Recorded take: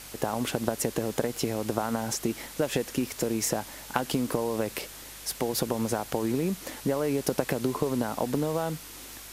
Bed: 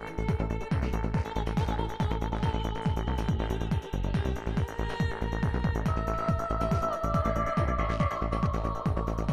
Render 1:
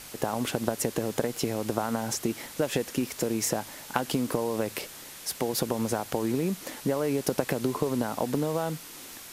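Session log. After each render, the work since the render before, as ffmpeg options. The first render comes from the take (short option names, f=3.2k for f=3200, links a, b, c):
-af "bandreject=f=50:t=h:w=4,bandreject=f=100:t=h:w=4"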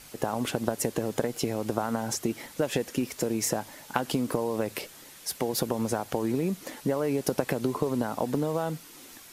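-af "afftdn=nr=6:nf=-45"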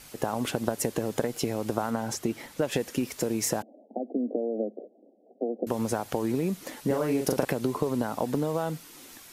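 -filter_complex "[0:a]asettb=1/sr,asplit=3[a][b][c];[a]atrim=end=1.904[d];[b]atrim=start=1.9:end=2.72,asetpts=PTS-STARTPTS,afade=t=in:d=0.004:c=qsin,afade=t=out:st=0.816:d=0.004:c=qsin,highshelf=f=5.1k:g=-4.5[e];[c]atrim=start=2.716[f];[d][e]acrossfade=d=0.004:c1=hsin:c2=qsin[g];[g][f]acrossfade=d=0.004:c1=qsin:c2=hsin,asettb=1/sr,asplit=3[h][i][j];[h]atrim=end=3.624[k];[i]atrim=start=3.62:end=5.67,asetpts=PTS-STARTPTS,afade=t=in:d=0.004:c=qsin,afade=t=out:st=2.046:d=0.004:c=qsin,asuperpass=centerf=390:order=20:qfactor=0.74[l];[j]atrim=start=5.666[m];[k][l]acrossfade=d=0.004:c1=hsin:c2=qsin[n];[n][m]acrossfade=d=0.004:c1=qsin:c2=hsin,asettb=1/sr,asplit=3[o][p][q];[o]atrim=end=6.864[r];[p]atrim=start=6.86:end=7.45,asetpts=PTS-STARTPTS,afade=t=in:d=0.004:c=qsin,afade=t=out:st=0.586:d=0.004:c=qsin,asplit=2[s][t];[t]adelay=39,volume=-4dB[u];[s][u]amix=inputs=2:normalize=0,atrim=end_sample=26019[v];[q]atrim=start=7.446[w];[r][v]acrossfade=d=0.004:c1=hsin:c2=qsin[x];[x][w]acrossfade=d=0.004:c1=qsin:c2=hsin"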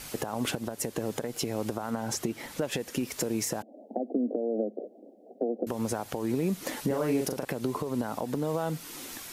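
-filter_complex "[0:a]asplit=2[a][b];[b]acompressor=threshold=-35dB:ratio=6,volume=1dB[c];[a][c]amix=inputs=2:normalize=0,alimiter=limit=-18dB:level=0:latency=1:release=340"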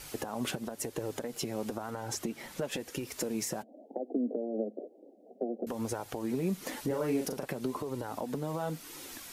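-af "flanger=delay=2.1:depth=3.3:regen=-46:speed=1:shape=sinusoidal"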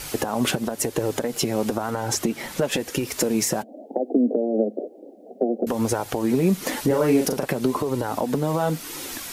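-af "volume=12dB"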